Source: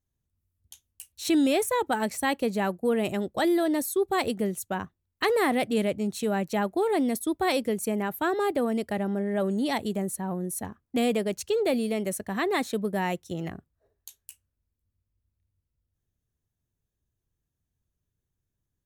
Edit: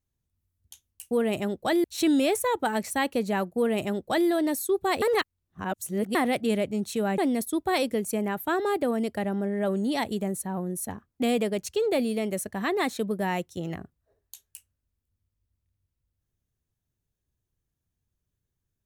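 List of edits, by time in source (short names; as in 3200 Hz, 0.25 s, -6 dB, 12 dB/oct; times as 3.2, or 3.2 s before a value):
2.83–3.56 copy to 1.11
4.29–5.42 reverse
6.45–6.92 cut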